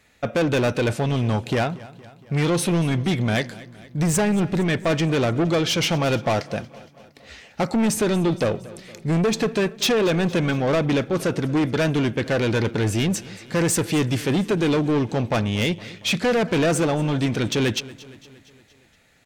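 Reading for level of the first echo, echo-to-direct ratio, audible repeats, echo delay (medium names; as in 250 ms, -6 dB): -19.5 dB, -17.5 dB, 4, 232 ms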